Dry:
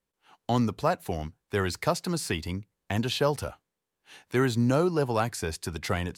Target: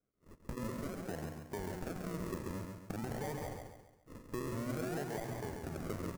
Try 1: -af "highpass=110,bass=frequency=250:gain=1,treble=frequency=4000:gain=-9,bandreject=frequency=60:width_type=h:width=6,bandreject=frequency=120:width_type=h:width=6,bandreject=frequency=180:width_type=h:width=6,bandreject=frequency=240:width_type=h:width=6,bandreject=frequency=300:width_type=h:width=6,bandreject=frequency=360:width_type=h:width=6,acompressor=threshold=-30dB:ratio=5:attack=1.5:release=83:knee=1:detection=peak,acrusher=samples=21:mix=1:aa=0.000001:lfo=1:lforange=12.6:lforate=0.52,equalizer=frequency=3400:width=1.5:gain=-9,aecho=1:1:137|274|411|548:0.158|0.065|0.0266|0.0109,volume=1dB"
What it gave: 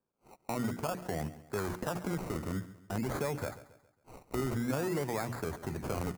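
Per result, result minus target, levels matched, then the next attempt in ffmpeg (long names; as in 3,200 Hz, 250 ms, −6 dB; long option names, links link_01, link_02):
echo-to-direct −11 dB; downward compressor: peak gain reduction −7 dB; sample-and-hold swept by an LFO: distortion −8 dB
-af "highpass=110,bass=frequency=250:gain=1,treble=frequency=4000:gain=-9,bandreject=frequency=60:width_type=h:width=6,bandreject=frequency=120:width_type=h:width=6,bandreject=frequency=180:width_type=h:width=6,bandreject=frequency=240:width_type=h:width=6,bandreject=frequency=300:width_type=h:width=6,bandreject=frequency=360:width_type=h:width=6,acompressor=threshold=-30dB:ratio=5:attack=1.5:release=83:knee=1:detection=peak,acrusher=samples=21:mix=1:aa=0.000001:lfo=1:lforange=12.6:lforate=0.52,equalizer=frequency=3400:width=1.5:gain=-9,aecho=1:1:137|274|411|548|685:0.562|0.231|0.0945|0.0388|0.0159,volume=1dB"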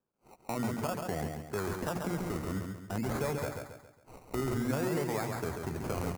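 downward compressor: peak gain reduction −7 dB; sample-and-hold swept by an LFO: distortion −8 dB
-af "highpass=110,bass=frequency=250:gain=1,treble=frequency=4000:gain=-9,bandreject=frequency=60:width_type=h:width=6,bandreject=frequency=120:width_type=h:width=6,bandreject=frequency=180:width_type=h:width=6,bandreject=frequency=240:width_type=h:width=6,bandreject=frequency=300:width_type=h:width=6,bandreject=frequency=360:width_type=h:width=6,acompressor=threshold=-39dB:ratio=5:attack=1.5:release=83:knee=1:detection=peak,acrusher=samples=21:mix=1:aa=0.000001:lfo=1:lforange=12.6:lforate=0.52,equalizer=frequency=3400:width=1.5:gain=-9,aecho=1:1:137|274|411|548|685:0.562|0.231|0.0945|0.0388|0.0159,volume=1dB"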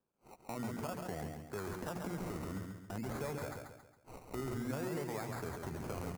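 sample-and-hold swept by an LFO: distortion −8 dB
-af "highpass=110,bass=frequency=250:gain=1,treble=frequency=4000:gain=-9,bandreject=frequency=60:width_type=h:width=6,bandreject=frequency=120:width_type=h:width=6,bandreject=frequency=180:width_type=h:width=6,bandreject=frequency=240:width_type=h:width=6,bandreject=frequency=300:width_type=h:width=6,bandreject=frequency=360:width_type=h:width=6,acompressor=threshold=-39dB:ratio=5:attack=1.5:release=83:knee=1:detection=peak,acrusher=samples=46:mix=1:aa=0.000001:lfo=1:lforange=27.6:lforate=0.52,equalizer=frequency=3400:width=1.5:gain=-9,aecho=1:1:137|274|411|548|685:0.562|0.231|0.0945|0.0388|0.0159,volume=1dB"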